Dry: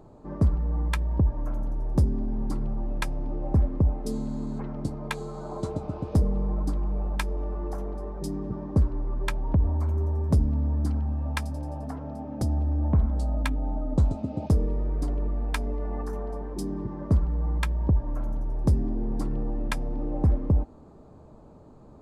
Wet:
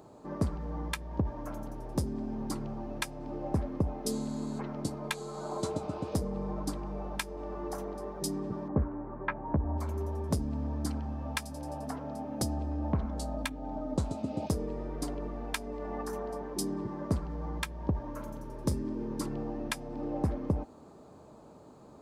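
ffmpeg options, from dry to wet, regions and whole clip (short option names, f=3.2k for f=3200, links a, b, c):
-filter_complex "[0:a]asettb=1/sr,asplit=3[a][b][c];[a]atrim=end=8.684[d];[b]atrim=start=8.68:end=9.78,asetpts=PTS-STARTPTS,afade=t=in:d=0.004:c=qsin,afade=t=out:st=1.096:d=0.004:c=qsin,lowpass=f=1.8k:w=0.5412,lowpass=f=1.8k:w=1.3066,asplit=2[e][f];[f]adelay=14,volume=-6.5dB[g];[e][g]amix=inputs=2:normalize=0,atrim=end_sample=48510[h];[c]atrim=start=9.776[i];[d][h]acrossfade=d=0.004:c1=hsin:c2=qsin[j];[j][i]acrossfade=d=0.004:c1=qsin:c2=hsin,asettb=1/sr,asplit=3[k][l][m];[k]atrim=end=18.084[n];[l]atrim=start=18.08:end=19.26,asetpts=PTS-STARTPTS,afade=t=in:d=0.004:c=qsin,afade=t=out:st=1.176:d=0.004:c=qsin,asuperstop=centerf=730:order=4:qfactor=4.4,asplit=2[o][p];[p]adelay=39,volume=-14dB[q];[o][q]amix=inputs=2:normalize=0,atrim=end_sample=52038[r];[m]atrim=start=19.256[s];[n][r]acrossfade=d=0.004:c1=hsin:c2=qsin[t];[t][s]acrossfade=d=0.004:c1=qsin:c2=hsin,highpass=f=230:p=1,highshelf=f=2.6k:g=8.5,alimiter=limit=-16dB:level=0:latency=1:release=326"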